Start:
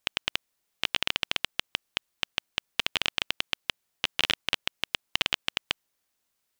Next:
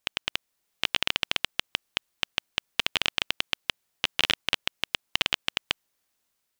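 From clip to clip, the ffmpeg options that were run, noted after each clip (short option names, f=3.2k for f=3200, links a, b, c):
-af "dynaudnorm=f=140:g=7:m=4.5dB,volume=-1dB"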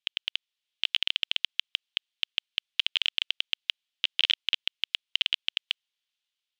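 -af "bandpass=f=3.2k:t=q:w=3.2:csg=0,volume=2.5dB"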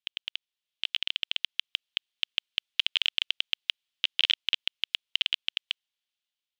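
-af "dynaudnorm=f=610:g=5:m=7dB,volume=-4.5dB"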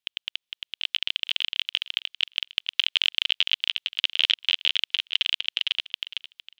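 -af "aecho=1:1:457|914|1371:0.631|0.12|0.0228,volume=3.5dB"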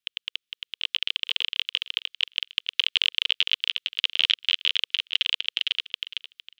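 -af "asuperstop=centerf=740:order=12:qfactor=1.1"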